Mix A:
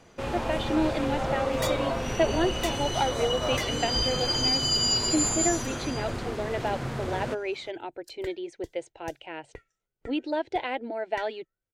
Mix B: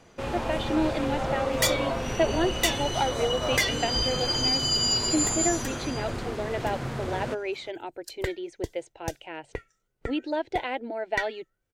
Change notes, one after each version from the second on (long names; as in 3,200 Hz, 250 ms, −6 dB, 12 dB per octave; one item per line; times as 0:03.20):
second sound +10.0 dB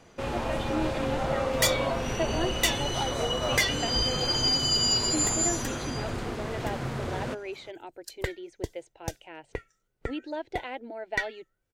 speech −6.0 dB